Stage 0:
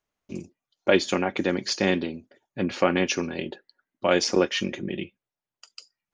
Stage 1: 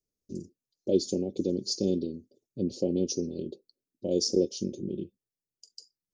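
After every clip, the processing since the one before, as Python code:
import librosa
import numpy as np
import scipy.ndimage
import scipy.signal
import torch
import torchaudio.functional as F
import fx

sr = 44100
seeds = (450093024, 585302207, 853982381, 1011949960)

y = scipy.signal.sosfilt(scipy.signal.cheby1(3, 1.0, [460.0, 4800.0], 'bandstop', fs=sr, output='sos'), x)
y = y * 10.0 ** (-2.0 / 20.0)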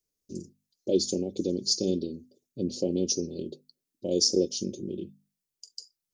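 y = fx.high_shelf(x, sr, hz=2800.0, db=7.5)
y = fx.hum_notches(y, sr, base_hz=50, count=5)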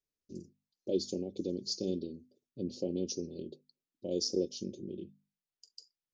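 y = scipy.signal.sosfilt(scipy.signal.butter(2, 4900.0, 'lowpass', fs=sr, output='sos'), x)
y = y * 10.0 ** (-7.0 / 20.0)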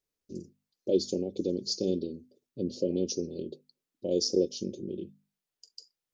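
y = fx.spec_repair(x, sr, seeds[0], start_s=2.71, length_s=0.22, low_hz=610.0, high_hz=2700.0, source='both')
y = fx.peak_eq(y, sr, hz=480.0, db=3.5, octaves=0.71)
y = y * 10.0 ** (4.0 / 20.0)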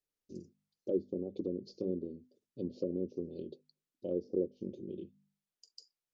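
y = fx.env_lowpass_down(x, sr, base_hz=620.0, full_db=-25.5)
y = fx.hum_notches(y, sr, base_hz=50, count=4)
y = y * 10.0 ** (-6.0 / 20.0)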